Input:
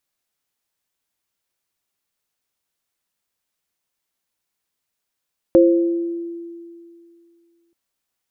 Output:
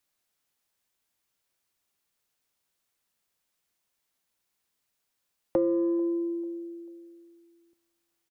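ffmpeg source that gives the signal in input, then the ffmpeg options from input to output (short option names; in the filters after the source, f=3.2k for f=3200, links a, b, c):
-f lavfi -i "aevalsrc='0.355*pow(10,-3*t/2.44)*sin(2*PI*339*t)+0.355*pow(10,-3*t/0.82)*sin(2*PI*527*t)':d=2.18:s=44100"
-filter_complex "[0:a]acrossover=split=370|860[a][b][c];[a]acompressor=threshold=-31dB:ratio=4[d];[b]acompressor=threshold=-26dB:ratio=4[e];[c]acompressor=threshold=-56dB:ratio=4[f];[d][e][f]amix=inputs=3:normalize=0,acrossover=split=410[g][h];[g]asoftclip=type=tanh:threshold=-25.5dB[i];[h]asplit=2[j][k];[k]adelay=442,lowpass=f=2k:p=1,volume=-23dB,asplit=2[l][m];[m]adelay=442,lowpass=f=2k:p=1,volume=0.39,asplit=2[n][o];[o]adelay=442,lowpass=f=2k:p=1,volume=0.39[p];[j][l][n][p]amix=inputs=4:normalize=0[q];[i][q]amix=inputs=2:normalize=0"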